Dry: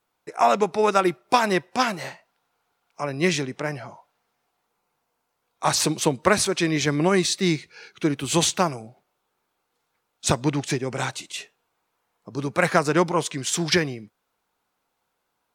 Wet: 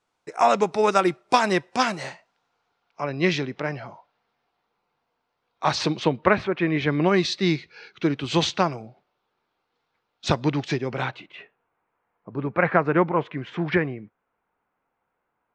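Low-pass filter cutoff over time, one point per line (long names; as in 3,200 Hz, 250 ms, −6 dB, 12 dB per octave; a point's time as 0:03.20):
low-pass filter 24 dB per octave
0:02.05 8,700 Hz
0:03.01 4,700 Hz
0:05.88 4,700 Hz
0:06.56 2,300 Hz
0:07.20 4,800 Hz
0:10.87 4,800 Hz
0:11.31 2,300 Hz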